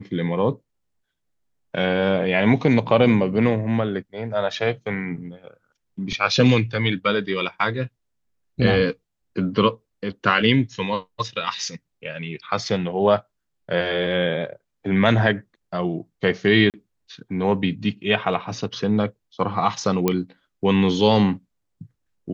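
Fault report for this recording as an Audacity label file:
16.700000	16.740000	gap 38 ms
20.080000	20.080000	pop -6 dBFS

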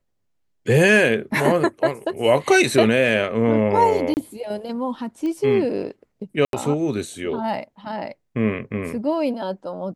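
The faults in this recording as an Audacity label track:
4.140000	4.170000	gap 29 ms
5.260000	5.260000	pop -19 dBFS
6.450000	6.530000	gap 82 ms

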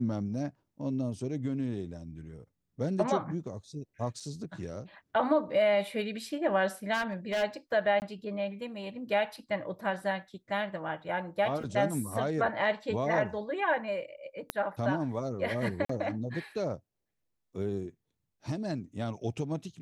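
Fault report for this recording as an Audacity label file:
4.200000	4.210000	gap 5 ms
6.930000	7.440000	clipped -27 dBFS
8.000000	8.020000	gap 19 ms
11.630000	11.630000	gap 3.3 ms
14.500000	14.500000	pop -16 dBFS
15.850000	15.890000	gap 44 ms

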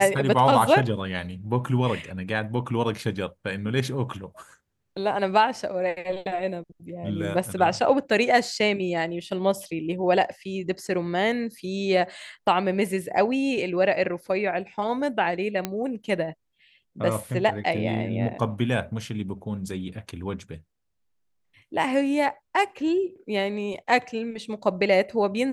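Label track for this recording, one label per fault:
15.650000	15.650000	pop -11 dBFS

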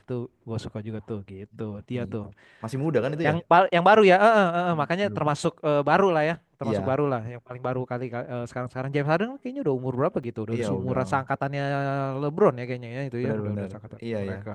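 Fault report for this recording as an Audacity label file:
10.230000	10.240000	gap 5.7 ms

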